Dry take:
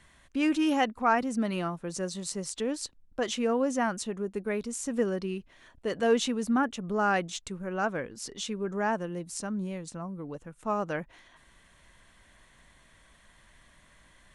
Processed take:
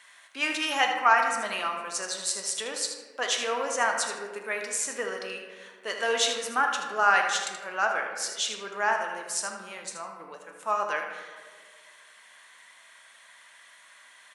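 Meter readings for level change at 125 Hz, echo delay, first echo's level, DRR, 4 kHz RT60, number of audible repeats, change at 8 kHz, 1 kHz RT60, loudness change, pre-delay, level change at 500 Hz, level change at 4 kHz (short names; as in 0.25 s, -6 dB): under -15 dB, 78 ms, -10.0 dB, 2.0 dB, 0.85 s, 1, +8.0 dB, 1.4 s, +3.0 dB, 3 ms, -2.0 dB, +8.5 dB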